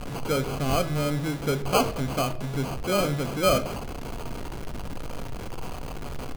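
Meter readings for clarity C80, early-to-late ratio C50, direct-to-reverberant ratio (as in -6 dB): 18.0 dB, 15.5 dB, 8.0 dB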